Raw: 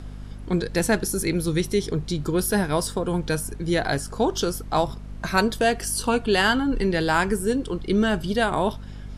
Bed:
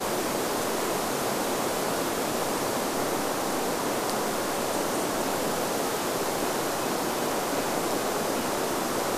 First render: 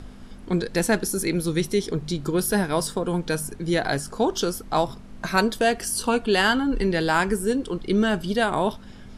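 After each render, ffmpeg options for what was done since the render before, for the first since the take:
-af "bandreject=f=50:t=h:w=6,bandreject=f=100:t=h:w=6,bandreject=f=150:t=h:w=6"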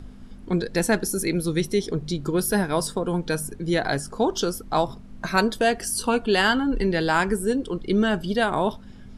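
-af "afftdn=nr=6:nf=-42"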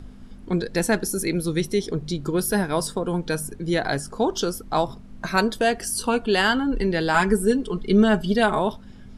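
-filter_complex "[0:a]asettb=1/sr,asplit=3[a][b][c];[a]atrim=end=7.144[d];[b]atrim=start=7.14:end=8.59,asetpts=PTS-STARTPTS,afade=t=in:d=0.004:c=qsin,afade=t=out:st=1.446:d=0.004:c=qsin,aecho=1:1:4.7:0.73,atrim=end_sample=63945[e];[c]atrim=start=8.586[f];[d][e]acrossfade=d=0.004:c1=hsin:c2=qsin[g];[g][f]acrossfade=d=0.004:c1=qsin:c2=hsin"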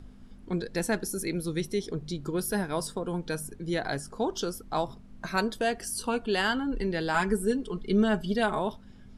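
-af "volume=-7dB"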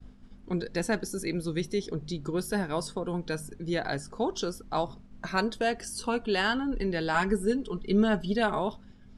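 -af "agate=range=-33dB:threshold=-45dB:ratio=3:detection=peak,lowpass=8.3k"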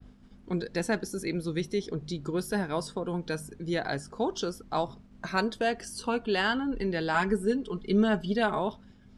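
-af "highpass=f=46:p=1,adynamicequalizer=threshold=0.00316:dfrequency=5300:dqfactor=0.7:tfrequency=5300:tqfactor=0.7:attack=5:release=100:ratio=0.375:range=2.5:mode=cutabove:tftype=highshelf"

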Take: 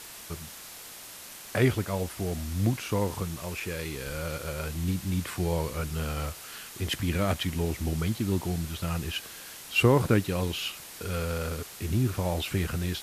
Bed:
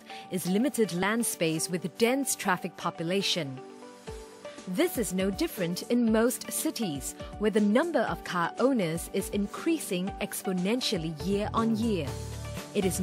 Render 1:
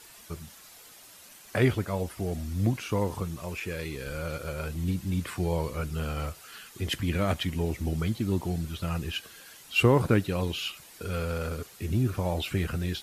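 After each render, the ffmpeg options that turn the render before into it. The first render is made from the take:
-af "afftdn=nr=9:nf=-45"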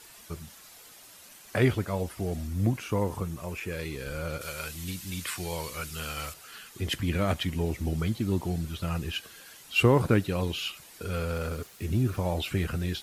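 -filter_complex "[0:a]asettb=1/sr,asplit=3[a][b][c];[a]atrim=end=2.474[d];[b]atrim=start=2.47:end=3.73,asetpts=PTS-STARTPTS,afade=t=in:d=0.004:c=qsin,afade=t=out:st=1.256:d=0.004:c=qsin,equalizer=f=4.1k:t=o:w=1.2:g=-4[e];[c]atrim=start=3.726[f];[d][e]acrossfade=d=0.004:c1=hsin:c2=qsin[g];[g][f]acrossfade=d=0.004:c1=qsin:c2=hsin,asettb=1/sr,asplit=3[h][i][j];[h]atrim=end=4.414[k];[i]atrim=start=4.41:end=6.34,asetpts=PTS-STARTPTS,afade=t=in:d=0.004:c=qsin,afade=t=out:st=1.926:d=0.004:c=qsin,tiltshelf=f=1.2k:g=-8.5[l];[j]atrim=start=6.336[m];[k][l]acrossfade=d=0.004:c1=hsin:c2=qsin[n];[n][m]acrossfade=d=0.004:c1=qsin:c2=hsin,asettb=1/sr,asplit=3[o][p][q];[o]atrim=end=11.334[r];[p]atrim=start=11.33:end=12.2,asetpts=PTS-STARTPTS,afade=t=in:d=0.004:c=qsin,afade=t=out:st=0.866:d=0.004:c=qsin,aeval=exprs='val(0)*gte(abs(val(0)),0.00266)':c=same[s];[q]atrim=start=12.196[t];[r][s]acrossfade=d=0.004:c1=hsin:c2=qsin[u];[u][t]acrossfade=d=0.004:c1=qsin:c2=hsin"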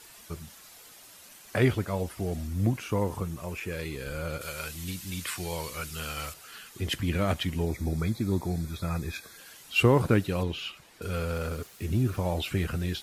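-filter_complex "[0:a]asettb=1/sr,asplit=3[a][b][c];[a]atrim=end=3.814[d];[b]atrim=start=3.81:end=4.55,asetpts=PTS-STARTPTS,afade=t=in:d=0.004:c=qsin,afade=t=out:st=0.736:d=0.004:c=qsin,bandreject=f=5.7k:w=12[e];[c]atrim=start=4.546[f];[d][e]acrossfade=d=0.004:c1=hsin:c2=qsin[g];[g][f]acrossfade=d=0.004:c1=qsin:c2=hsin,asplit=3[h][i][j];[h]afade=t=out:st=7.65:d=0.02[k];[i]asuperstop=centerf=2900:order=20:qfactor=4.1,afade=t=in:st=7.65:d=0.02,afade=t=out:st=9.37:d=0.02[l];[j]afade=t=in:st=9.37:d=0.02[m];[k][l][m]amix=inputs=3:normalize=0,asettb=1/sr,asplit=3[n][o][p];[n]atrim=end=10.434[q];[o]atrim=start=10.43:end=11.02,asetpts=PTS-STARTPTS,afade=t=in:d=0.004:c=qsin,afade=t=out:st=0.586:d=0.004:c=qsin,lowpass=f=2.8k:p=1[r];[p]atrim=start=11.016[s];[q][r]acrossfade=d=0.004:c1=hsin:c2=qsin[t];[t][s]acrossfade=d=0.004:c1=qsin:c2=hsin"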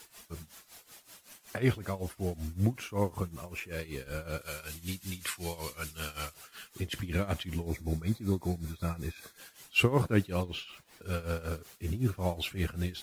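-af "acrusher=bits=9:mix=0:aa=0.000001,tremolo=f=5.3:d=0.84"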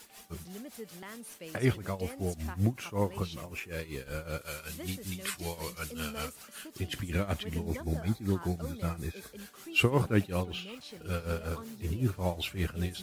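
-filter_complex "[1:a]volume=-18.5dB[a];[0:a][a]amix=inputs=2:normalize=0"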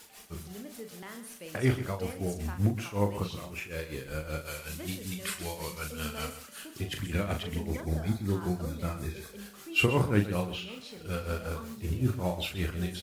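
-filter_complex "[0:a]asplit=2[a][b];[b]adelay=39,volume=-6.5dB[c];[a][c]amix=inputs=2:normalize=0,aecho=1:1:128:0.237"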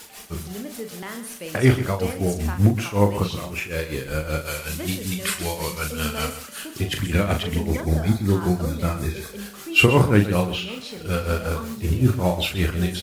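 -af "volume=10dB,alimiter=limit=-3dB:level=0:latency=1"

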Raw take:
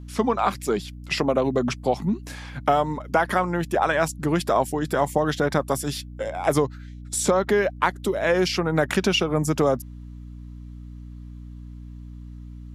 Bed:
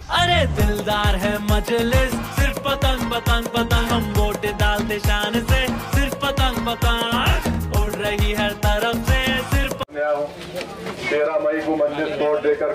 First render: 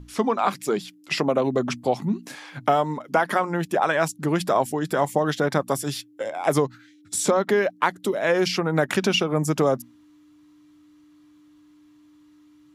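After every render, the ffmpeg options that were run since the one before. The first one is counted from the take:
-af "bandreject=f=60:t=h:w=6,bandreject=f=120:t=h:w=6,bandreject=f=180:t=h:w=6,bandreject=f=240:t=h:w=6"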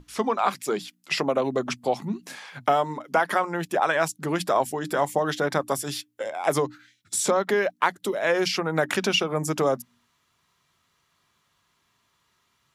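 -af "lowshelf=f=340:g=-6.5,bandreject=f=60:t=h:w=6,bandreject=f=120:t=h:w=6,bandreject=f=180:t=h:w=6,bandreject=f=240:t=h:w=6,bandreject=f=300:t=h:w=6"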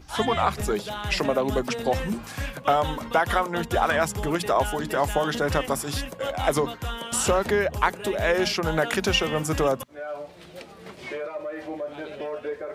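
-filter_complex "[1:a]volume=-13dB[a];[0:a][a]amix=inputs=2:normalize=0"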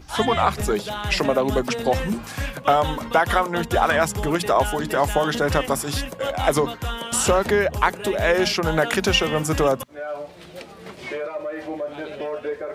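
-af "volume=3.5dB,alimiter=limit=-3dB:level=0:latency=1"

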